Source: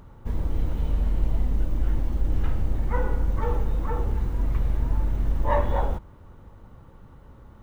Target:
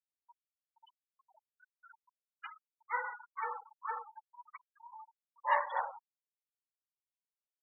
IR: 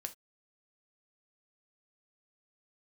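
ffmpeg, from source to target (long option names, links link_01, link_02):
-af "asuperpass=centerf=1900:order=4:qfactor=0.71,highshelf=frequency=2400:gain=6,afftfilt=real='re*gte(hypot(re,im),0.0224)':imag='im*gte(hypot(re,im),0.0224)':win_size=1024:overlap=0.75"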